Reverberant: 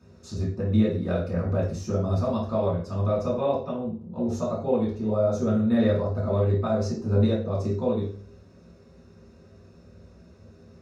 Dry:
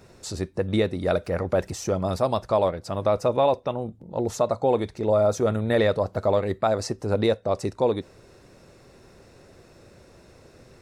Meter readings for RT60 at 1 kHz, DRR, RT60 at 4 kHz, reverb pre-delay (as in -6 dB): 0.45 s, -7.0 dB, 0.40 s, 3 ms